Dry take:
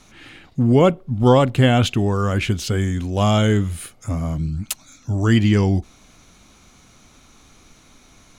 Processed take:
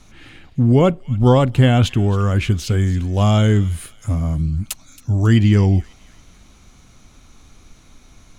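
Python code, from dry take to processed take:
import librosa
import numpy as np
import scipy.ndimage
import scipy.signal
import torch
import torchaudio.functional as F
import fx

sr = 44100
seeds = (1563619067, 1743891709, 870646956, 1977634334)

p1 = fx.low_shelf(x, sr, hz=120.0, db=10.5)
p2 = p1 + fx.echo_wet_highpass(p1, sr, ms=273, feedback_pct=46, hz=1700.0, wet_db=-18.0, dry=0)
y = p2 * 10.0 ** (-1.5 / 20.0)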